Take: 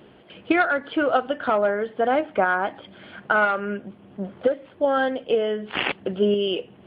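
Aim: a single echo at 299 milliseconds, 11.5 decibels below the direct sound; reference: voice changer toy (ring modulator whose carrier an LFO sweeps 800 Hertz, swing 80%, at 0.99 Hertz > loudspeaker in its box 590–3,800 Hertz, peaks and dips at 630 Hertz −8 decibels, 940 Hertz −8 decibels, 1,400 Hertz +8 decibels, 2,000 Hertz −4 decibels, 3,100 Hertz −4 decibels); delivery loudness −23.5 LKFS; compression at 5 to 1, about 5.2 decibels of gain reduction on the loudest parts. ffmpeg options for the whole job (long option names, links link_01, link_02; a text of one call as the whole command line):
ffmpeg -i in.wav -af "acompressor=threshold=-21dB:ratio=5,aecho=1:1:299:0.266,aeval=exprs='val(0)*sin(2*PI*800*n/s+800*0.8/0.99*sin(2*PI*0.99*n/s))':channel_layout=same,highpass=590,equalizer=frequency=630:width_type=q:width=4:gain=-8,equalizer=frequency=940:width_type=q:width=4:gain=-8,equalizer=frequency=1400:width_type=q:width=4:gain=8,equalizer=frequency=2000:width_type=q:width=4:gain=-4,equalizer=frequency=3100:width_type=q:width=4:gain=-4,lowpass=frequency=3800:width=0.5412,lowpass=frequency=3800:width=1.3066,volume=7.5dB" out.wav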